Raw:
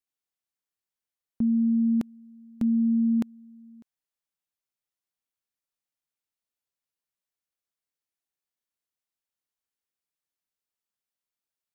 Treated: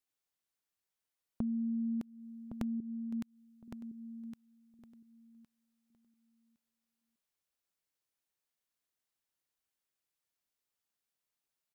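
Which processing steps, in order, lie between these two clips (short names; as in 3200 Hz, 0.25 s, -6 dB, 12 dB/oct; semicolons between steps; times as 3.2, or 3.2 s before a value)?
2.8–3.68 bell 470 Hz -14.5 dB 1.6 oct; compressor 5:1, threshold -36 dBFS, peak gain reduction 13 dB; feedback echo 1.112 s, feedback 18%, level -9 dB; gain +1 dB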